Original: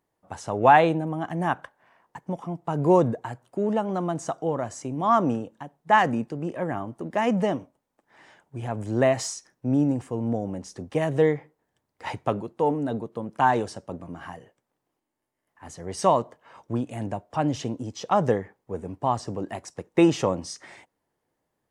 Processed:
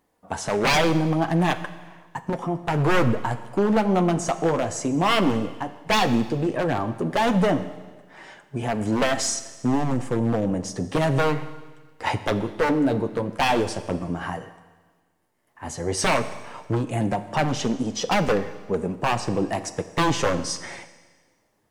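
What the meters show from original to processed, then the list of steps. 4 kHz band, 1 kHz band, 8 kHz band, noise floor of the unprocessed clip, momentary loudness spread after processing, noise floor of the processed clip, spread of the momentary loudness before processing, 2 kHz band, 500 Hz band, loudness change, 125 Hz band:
+10.5 dB, −0.5 dB, +8.0 dB, −80 dBFS, 11 LU, −67 dBFS, 17 LU, +4.5 dB, +1.0 dB, +1.5 dB, +4.0 dB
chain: in parallel at +3 dB: downward compressor 5 to 1, threshold −29 dBFS, peak gain reduction 16.5 dB
on the sum: wave folding −15.5 dBFS
flanger 0.11 Hz, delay 3.8 ms, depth 8.1 ms, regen −39%
four-comb reverb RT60 1.4 s, combs from 29 ms, DRR 12 dB
level +5 dB

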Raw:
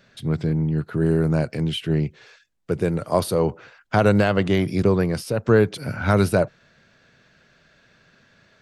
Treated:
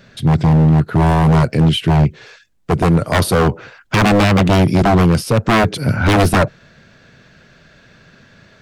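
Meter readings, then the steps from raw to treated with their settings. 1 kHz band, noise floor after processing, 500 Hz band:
+11.0 dB, −49 dBFS, +3.0 dB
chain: low-shelf EQ 320 Hz +5.5 dB
wave folding −15 dBFS
level +8.5 dB

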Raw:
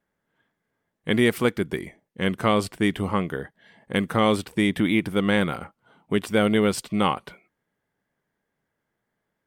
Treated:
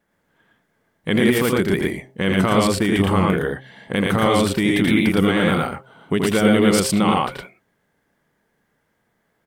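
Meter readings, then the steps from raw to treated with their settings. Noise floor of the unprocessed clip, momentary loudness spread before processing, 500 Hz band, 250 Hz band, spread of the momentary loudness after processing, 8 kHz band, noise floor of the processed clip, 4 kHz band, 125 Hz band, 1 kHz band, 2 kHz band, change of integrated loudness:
−80 dBFS, 11 LU, +5.0 dB, +6.0 dB, 11 LU, +10.0 dB, −69 dBFS, +5.0 dB, +7.0 dB, +5.0 dB, +5.0 dB, +5.0 dB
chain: hum removal 131.1 Hz, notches 5
brickwall limiter −17.5 dBFS, peak gain reduction 9.5 dB
pitch vibrato 8.6 Hz 38 cents
on a send: loudspeakers that aren't time-aligned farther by 28 metres −4 dB, 39 metres −1 dB
on the sum: level +7.5 dB

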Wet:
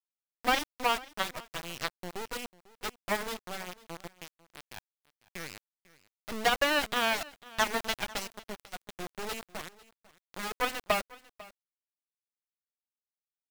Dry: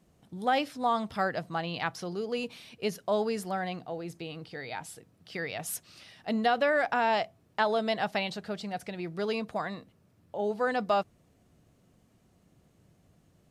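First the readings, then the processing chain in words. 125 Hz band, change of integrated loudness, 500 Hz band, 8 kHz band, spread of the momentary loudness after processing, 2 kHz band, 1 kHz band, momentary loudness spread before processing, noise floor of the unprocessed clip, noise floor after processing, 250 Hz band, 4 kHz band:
−8.5 dB, −1.5 dB, −6.5 dB, +4.0 dB, 20 LU, +1.0 dB, −3.5 dB, 14 LU, −66 dBFS, below −85 dBFS, −7.5 dB, +4.0 dB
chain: spectral dynamics exaggerated over time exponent 1.5
three-way crossover with the lows and the highs turned down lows −14 dB, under 250 Hz, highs −15 dB, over 3,800 Hz
in parallel at −0.5 dB: downward compressor 12 to 1, threshold −36 dBFS, peak gain reduction 14 dB
on the sum: harmonic generator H 2 −34 dB, 4 −28 dB, 6 −20 dB, 7 −12 dB, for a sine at −12.5 dBFS
bit reduction 6 bits
on a send: single-tap delay 497 ms −21 dB

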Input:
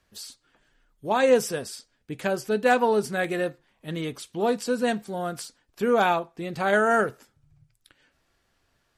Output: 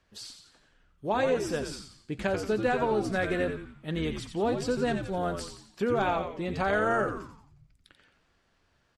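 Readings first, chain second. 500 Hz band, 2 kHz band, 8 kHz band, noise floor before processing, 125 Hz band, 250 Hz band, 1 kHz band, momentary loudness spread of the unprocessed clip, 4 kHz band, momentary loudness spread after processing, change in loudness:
−4.5 dB, −5.0 dB, −7.0 dB, −71 dBFS, +1.5 dB, −2.0 dB, −5.0 dB, 19 LU, −4.0 dB, 14 LU, −4.5 dB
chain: downward compressor 5 to 1, threshold −24 dBFS, peak gain reduction 10 dB
high-frequency loss of the air 60 metres
on a send: echo with shifted repeats 88 ms, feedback 45%, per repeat −98 Hz, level −7 dB

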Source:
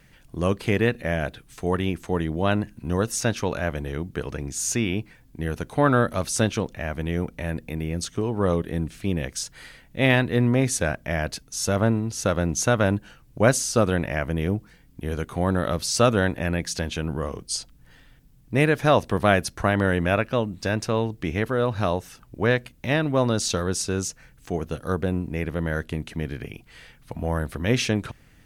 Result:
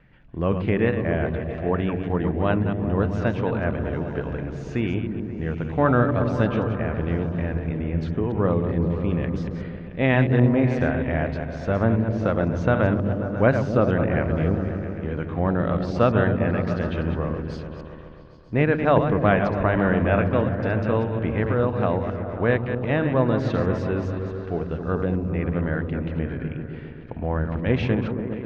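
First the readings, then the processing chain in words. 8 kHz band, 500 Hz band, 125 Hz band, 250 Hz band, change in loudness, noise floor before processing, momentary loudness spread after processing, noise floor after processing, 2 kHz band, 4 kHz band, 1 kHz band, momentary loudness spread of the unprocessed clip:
below −25 dB, +1.5 dB, +3.0 dB, +2.5 dB, +1.5 dB, −54 dBFS, 10 LU, −37 dBFS, −1.5 dB, −10.5 dB, +0.5 dB, 11 LU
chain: delay that plays each chunk backwards 130 ms, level −8 dB
Bessel low-pass filter 2,000 Hz, order 4
echo whose low-pass opens from repeat to repeat 134 ms, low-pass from 200 Hz, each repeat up 1 octave, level −3 dB

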